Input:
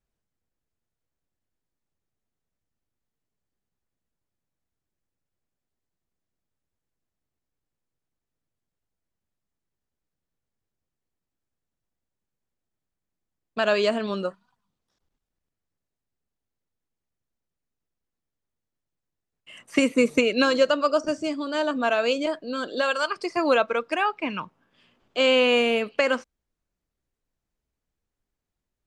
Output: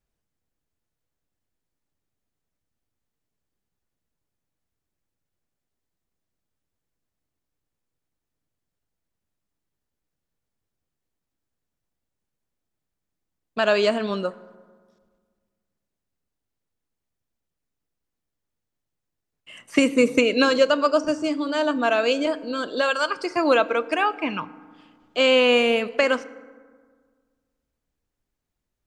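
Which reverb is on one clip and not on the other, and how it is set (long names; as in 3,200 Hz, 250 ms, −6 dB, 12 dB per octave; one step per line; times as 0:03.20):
feedback delay network reverb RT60 1.7 s, low-frequency decay 1.2×, high-frequency decay 0.45×, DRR 15.5 dB
level +2 dB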